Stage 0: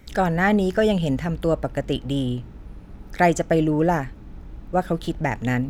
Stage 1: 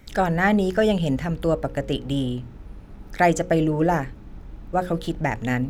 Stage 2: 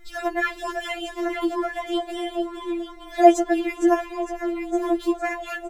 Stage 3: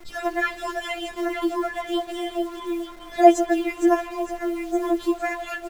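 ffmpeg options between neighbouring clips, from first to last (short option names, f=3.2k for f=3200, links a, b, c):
-af "bandreject=f=60:t=h:w=6,bandreject=f=120:t=h:w=6,bandreject=f=180:t=h:w=6,bandreject=f=240:t=h:w=6,bandreject=f=300:t=h:w=6,bandreject=f=360:t=h:w=6,bandreject=f=420:t=h:w=6,bandreject=f=480:t=h:w=6,bandreject=f=540:t=h:w=6"
-filter_complex "[0:a]asplit=9[a][b][c][d][e][f][g][h][i];[b]adelay=458,afreqshift=91,volume=-9dB[j];[c]adelay=916,afreqshift=182,volume=-13dB[k];[d]adelay=1374,afreqshift=273,volume=-17dB[l];[e]adelay=1832,afreqshift=364,volume=-21dB[m];[f]adelay=2290,afreqshift=455,volume=-25.1dB[n];[g]adelay=2748,afreqshift=546,volume=-29.1dB[o];[h]adelay=3206,afreqshift=637,volume=-33.1dB[p];[i]adelay=3664,afreqshift=728,volume=-37.1dB[q];[a][j][k][l][m][n][o][p][q]amix=inputs=9:normalize=0,afftfilt=real='re*4*eq(mod(b,16),0)':imag='im*4*eq(mod(b,16),0)':win_size=2048:overlap=0.75,volume=1.5dB"
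-filter_complex "[0:a]acrossover=split=500[a][b];[a]acrusher=bits=7:mix=0:aa=0.000001[c];[b]aecho=1:1:163:0.141[d];[c][d]amix=inputs=2:normalize=0"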